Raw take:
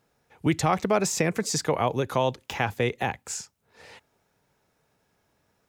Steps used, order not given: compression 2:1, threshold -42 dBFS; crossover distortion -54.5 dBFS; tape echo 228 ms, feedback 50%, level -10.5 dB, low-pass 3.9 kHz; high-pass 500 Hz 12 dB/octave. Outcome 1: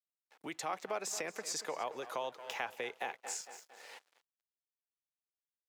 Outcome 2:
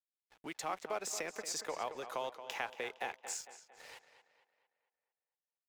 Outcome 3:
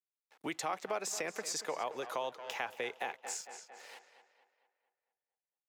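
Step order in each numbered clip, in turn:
tape echo > crossover distortion > compression > high-pass; compression > high-pass > crossover distortion > tape echo; crossover distortion > tape echo > high-pass > compression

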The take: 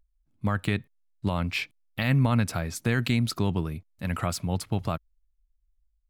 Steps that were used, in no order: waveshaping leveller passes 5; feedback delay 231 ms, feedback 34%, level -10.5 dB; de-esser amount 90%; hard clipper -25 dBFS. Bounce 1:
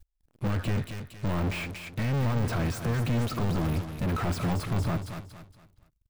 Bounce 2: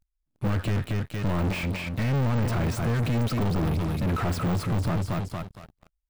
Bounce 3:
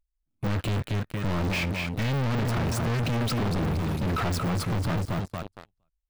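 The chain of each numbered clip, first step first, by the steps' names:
hard clipper > waveshaping leveller > feedback delay > de-esser; hard clipper > feedback delay > waveshaping leveller > de-esser; feedback delay > waveshaping leveller > de-esser > hard clipper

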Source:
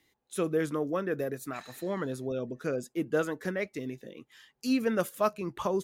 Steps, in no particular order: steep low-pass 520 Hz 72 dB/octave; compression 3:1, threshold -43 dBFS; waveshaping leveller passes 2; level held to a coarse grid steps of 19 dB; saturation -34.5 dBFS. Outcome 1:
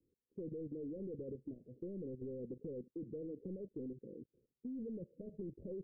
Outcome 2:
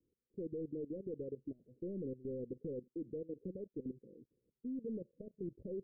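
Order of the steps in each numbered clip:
level held to a coarse grid > saturation > waveshaping leveller > steep low-pass > compression; compression > waveshaping leveller > level held to a coarse grid > saturation > steep low-pass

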